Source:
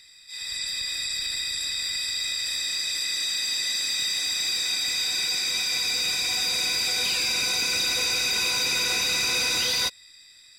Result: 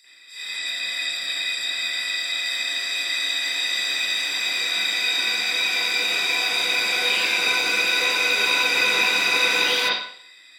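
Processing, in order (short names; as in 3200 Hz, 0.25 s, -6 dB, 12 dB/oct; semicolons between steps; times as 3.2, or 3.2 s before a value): HPF 310 Hz 12 dB/oct; high shelf 7600 Hz +5.5 dB; reverb, pre-delay 39 ms, DRR -15.5 dB; gain -7 dB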